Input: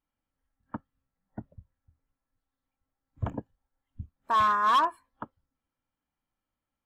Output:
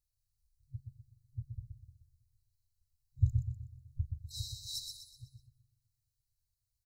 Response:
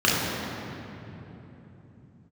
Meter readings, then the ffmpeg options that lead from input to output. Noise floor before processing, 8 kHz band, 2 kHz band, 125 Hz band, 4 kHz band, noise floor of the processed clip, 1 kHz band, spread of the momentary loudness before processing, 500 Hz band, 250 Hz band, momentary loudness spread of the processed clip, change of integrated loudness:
under -85 dBFS, n/a, under -40 dB, +6.0 dB, -3.5 dB, under -85 dBFS, under -40 dB, 21 LU, under -40 dB, under -10 dB, 22 LU, -13.5 dB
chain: -filter_complex "[0:a]asplit=2[a][b];[b]adelay=210,lowpass=f=2k:p=1,volume=-22dB,asplit=2[c][d];[d]adelay=210,lowpass=f=2k:p=1,volume=0.51,asplit=2[e][f];[f]adelay=210,lowpass=f=2k:p=1,volume=0.51,asplit=2[g][h];[h]adelay=210,lowpass=f=2k:p=1,volume=0.51[i];[c][e][g][i]amix=inputs=4:normalize=0[j];[a][j]amix=inputs=2:normalize=0,afftfilt=real='re*(1-between(b*sr/4096,130,3800))':imag='im*(1-between(b*sr/4096,130,3800))':win_size=4096:overlap=0.75,asplit=2[k][l];[l]aecho=0:1:124|248|372|496|620:0.562|0.231|0.0945|0.0388|0.0159[m];[k][m]amix=inputs=2:normalize=0,volume=5dB"

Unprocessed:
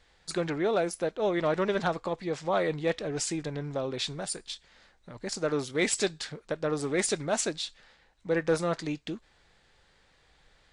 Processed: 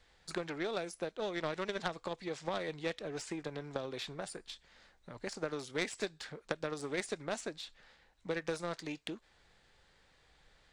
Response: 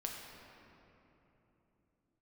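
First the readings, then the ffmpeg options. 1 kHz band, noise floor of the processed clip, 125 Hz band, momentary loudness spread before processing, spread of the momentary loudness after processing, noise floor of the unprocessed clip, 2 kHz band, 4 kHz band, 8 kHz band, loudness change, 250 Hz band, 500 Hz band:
-8.5 dB, -68 dBFS, -11.0 dB, 10 LU, 10 LU, -65 dBFS, -6.5 dB, -7.5 dB, -14.0 dB, -9.5 dB, -10.0 dB, -10.0 dB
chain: -filter_complex "[0:a]acrossover=split=340|2500[a][b][c];[a]acompressor=threshold=-47dB:ratio=4[d];[b]acompressor=threshold=-38dB:ratio=4[e];[c]acompressor=threshold=-46dB:ratio=4[f];[d][e][f]amix=inputs=3:normalize=0,aeval=exprs='0.075*(cos(1*acos(clip(val(0)/0.075,-1,1)))-cos(1*PI/2))+0.0168*(cos(3*acos(clip(val(0)/0.075,-1,1)))-cos(3*PI/2))':c=same,volume=6.5dB"

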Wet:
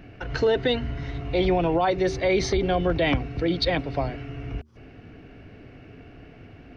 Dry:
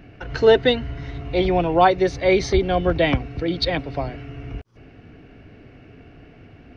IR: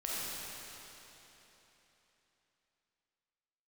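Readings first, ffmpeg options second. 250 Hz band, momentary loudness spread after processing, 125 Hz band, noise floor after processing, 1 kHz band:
-2.5 dB, 12 LU, -2.0 dB, -48 dBFS, -6.0 dB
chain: -af "alimiter=limit=-13.5dB:level=0:latency=1:release=33,bandreject=f=76.35:t=h:w=4,bandreject=f=152.7:t=h:w=4,bandreject=f=229.05:t=h:w=4,bandreject=f=305.4:t=h:w=4,bandreject=f=381.75:t=h:w=4"

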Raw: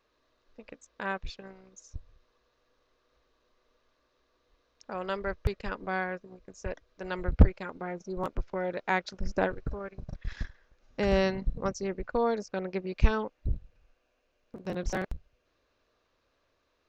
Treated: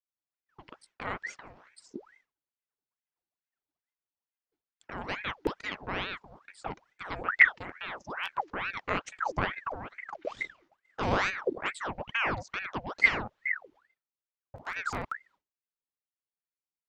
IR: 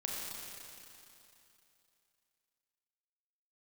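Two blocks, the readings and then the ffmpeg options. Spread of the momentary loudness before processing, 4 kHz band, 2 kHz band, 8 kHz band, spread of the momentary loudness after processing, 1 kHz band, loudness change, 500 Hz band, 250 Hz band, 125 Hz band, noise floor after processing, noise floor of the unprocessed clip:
20 LU, +4.0 dB, +8.5 dB, n/a, 18 LU, +1.5 dB, +1.0 dB, -6.5 dB, -7.0 dB, -10.5 dB, under -85 dBFS, -74 dBFS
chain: -af "agate=range=-33dB:threshold=-54dB:ratio=3:detection=peak,aeval=exprs='val(0)*sin(2*PI*1200*n/s+1200*0.75/2.3*sin(2*PI*2.3*n/s))':c=same"

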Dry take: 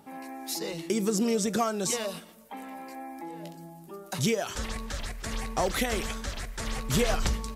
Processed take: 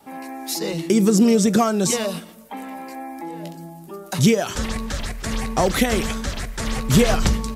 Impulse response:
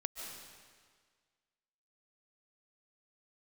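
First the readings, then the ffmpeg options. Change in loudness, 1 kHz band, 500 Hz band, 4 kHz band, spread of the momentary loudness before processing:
+10.0 dB, +7.5 dB, +8.5 dB, +7.0 dB, 16 LU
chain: -af "adynamicequalizer=threshold=0.00794:dfrequency=180:dqfactor=0.72:tfrequency=180:tqfactor=0.72:attack=5:release=100:ratio=0.375:range=3:mode=boostabove:tftype=bell,volume=7dB"

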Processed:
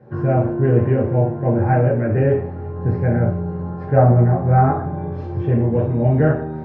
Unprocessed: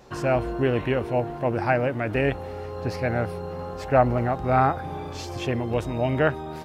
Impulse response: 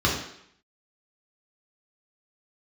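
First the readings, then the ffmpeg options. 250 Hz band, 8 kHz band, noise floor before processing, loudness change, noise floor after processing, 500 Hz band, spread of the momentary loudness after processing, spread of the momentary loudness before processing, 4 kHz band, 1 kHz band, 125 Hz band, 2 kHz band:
+7.5 dB, n/a, -35 dBFS, +7.0 dB, -29 dBFS, +4.5 dB, 10 LU, 12 LU, under -15 dB, +2.5 dB, +12.5 dB, -2.5 dB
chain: -filter_complex "[0:a]lowpass=1.2k[a];[1:a]atrim=start_sample=2205,asetrate=61740,aresample=44100[b];[a][b]afir=irnorm=-1:irlink=0,volume=-10.5dB"

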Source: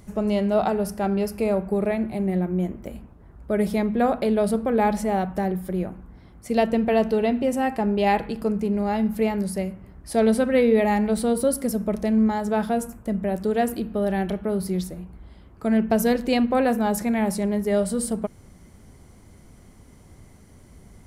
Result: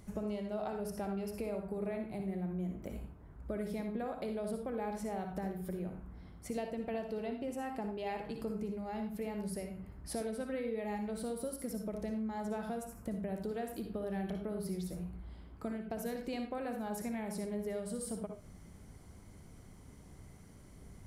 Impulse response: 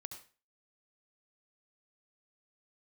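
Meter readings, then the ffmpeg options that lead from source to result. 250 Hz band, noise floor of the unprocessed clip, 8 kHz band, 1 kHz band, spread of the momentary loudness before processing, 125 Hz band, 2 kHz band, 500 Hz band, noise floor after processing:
-16.5 dB, -50 dBFS, -13.5 dB, -17.5 dB, 8 LU, -13.5 dB, -17.0 dB, -16.5 dB, -55 dBFS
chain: -filter_complex "[0:a]acompressor=threshold=-30dB:ratio=6[a];[1:a]atrim=start_sample=2205,asetrate=52920,aresample=44100[b];[a][b]afir=irnorm=-1:irlink=0"

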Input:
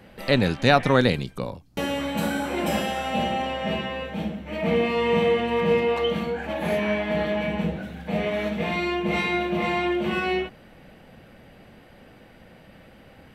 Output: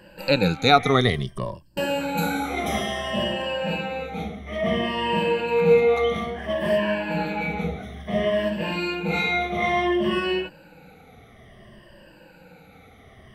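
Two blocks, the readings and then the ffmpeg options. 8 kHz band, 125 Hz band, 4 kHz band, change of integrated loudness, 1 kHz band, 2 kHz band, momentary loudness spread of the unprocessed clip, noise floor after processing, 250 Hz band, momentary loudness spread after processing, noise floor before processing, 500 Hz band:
n/a, 0.0 dB, +2.5 dB, +1.0 dB, +1.5 dB, +1.0 dB, 10 LU, -51 dBFS, -1.0 dB, 12 LU, -51 dBFS, +1.5 dB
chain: -af "afftfilt=real='re*pow(10,17/40*sin(2*PI*(1.3*log(max(b,1)*sr/1024/100)/log(2)-(-0.58)*(pts-256)/sr)))':imag='im*pow(10,17/40*sin(2*PI*(1.3*log(max(b,1)*sr/1024/100)/log(2)-(-0.58)*(pts-256)/sr)))':win_size=1024:overlap=0.75,equalizer=f=250:w=5.4:g=-6,volume=-2dB"

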